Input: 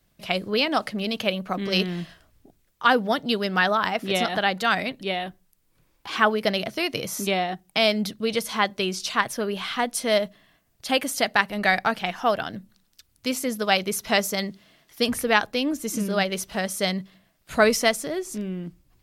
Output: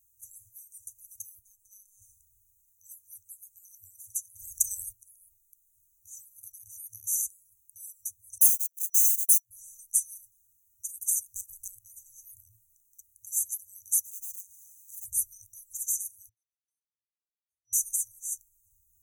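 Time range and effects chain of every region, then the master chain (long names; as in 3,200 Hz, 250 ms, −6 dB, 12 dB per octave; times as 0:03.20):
0:01.39–0:02.02: downward compressor 1.5 to 1, threshold −35 dBFS + phases set to zero 206 Hz
0:04.39–0:04.91: background noise brown −55 dBFS + high-shelf EQ 9,100 Hz −6.5 dB + every bin compressed towards the loudest bin 4 to 1
0:08.38–0:09.51: spike at every zero crossing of −20 dBFS + Bessel high-pass filter 1,900 Hz + noise gate −28 dBFS, range −47 dB
0:11.28–0:11.68: hard clipping −19 dBFS + leveller curve on the samples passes 1
0:14.05–0:15.05: tube saturation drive 34 dB, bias 0.35 + every bin compressed towards the loudest bin 4 to 1
0:16.29–0:17.73: de-essing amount 90% + elliptic band-pass filter 280–2,200 Hz, stop band 50 dB
whole clip: brick-wall band-stop 110–5,900 Hz; spectral tilt +2.5 dB per octave; level −2.5 dB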